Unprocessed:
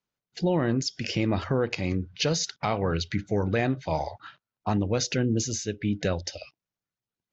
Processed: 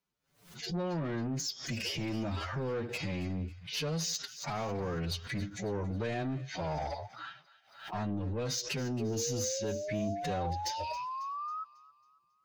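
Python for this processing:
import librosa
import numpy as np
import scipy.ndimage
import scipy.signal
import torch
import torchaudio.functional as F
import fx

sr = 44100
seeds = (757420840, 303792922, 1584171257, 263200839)

p1 = fx.peak_eq(x, sr, hz=160.0, db=3.5, octaves=0.21)
p2 = fx.over_compress(p1, sr, threshold_db=-30.0, ratio=-0.5)
p3 = p1 + (p2 * librosa.db_to_amplitude(-3.0))
p4 = 10.0 ** (-22.5 / 20.0) * np.tanh(p3 / 10.0 ** (-22.5 / 20.0))
p5 = fx.spec_paint(p4, sr, seeds[0], shape='rise', start_s=5.29, length_s=1.56, low_hz=420.0, high_hz=1300.0, level_db=-31.0)
p6 = fx.stretch_vocoder(p5, sr, factor=1.7)
p7 = p6 + fx.echo_wet_highpass(p6, sr, ms=273, feedback_pct=43, hz=1500.0, wet_db=-16.0, dry=0)
p8 = fx.pre_swell(p7, sr, db_per_s=110.0)
y = p8 * librosa.db_to_amplitude(-7.0)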